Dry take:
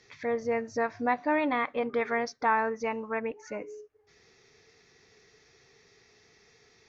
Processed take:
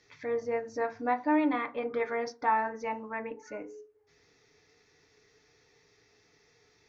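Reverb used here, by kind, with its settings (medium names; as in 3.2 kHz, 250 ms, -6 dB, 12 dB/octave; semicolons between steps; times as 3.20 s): FDN reverb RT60 0.3 s, low-frequency decay 1.1×, high-frequency decay 0.4×, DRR 5 dB; trim -5 dB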